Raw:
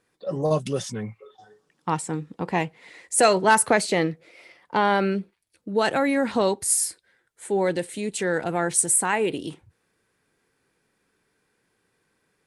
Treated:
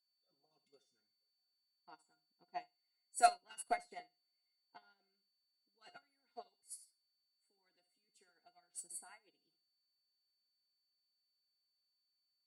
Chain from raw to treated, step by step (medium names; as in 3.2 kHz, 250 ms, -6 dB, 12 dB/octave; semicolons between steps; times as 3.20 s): Bessel high-pass 180 Hz; comb of notches 580 Hz; harmonic-percussive split harmonic -16 dB; in parallel at -10.5 dB: wavefolder -14.5 dBFS; on the sum: whistle 4.5 kHz -35 dBFS; feedback comb 710 Hz, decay 0.28 s, mix 90%; flutter echo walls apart 12 m, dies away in 0.35 s; upward expansion 2.5:1, over -49 dBFS; trim +3.5 dB